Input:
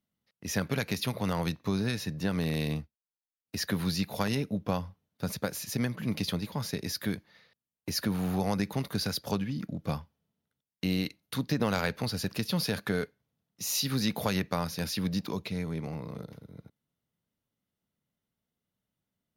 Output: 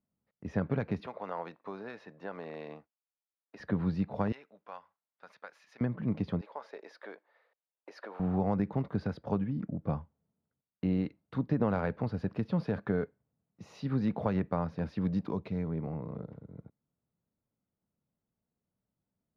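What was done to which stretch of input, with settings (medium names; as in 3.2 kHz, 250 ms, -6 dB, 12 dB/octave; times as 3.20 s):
1.06–3.60 s: high-pass 580 Hz
4.32–5.81 s: high-pass 1.4 kHz
6.41–8.20 s: high-pass 490 Hz 24 dB/octave
15.01–15.68 s: treble shelf 5.1 kHz +12 dB
whole clip: low-pass 1.1 kHz 12 dB/octave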